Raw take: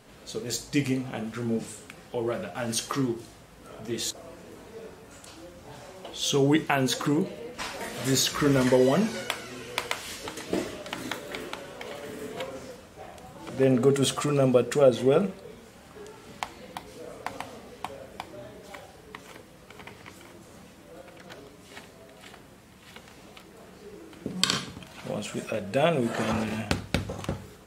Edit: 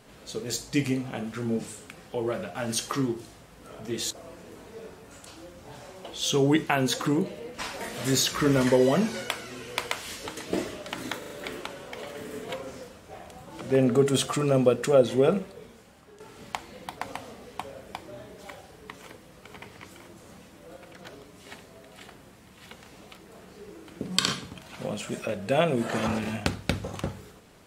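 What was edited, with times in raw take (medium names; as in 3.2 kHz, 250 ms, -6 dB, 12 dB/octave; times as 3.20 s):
11.18 s: stutter 0.04 s, 4 plays
15.36–16.08 s: fade out linear, to -9.5 dB
16.85–17.22 s: delete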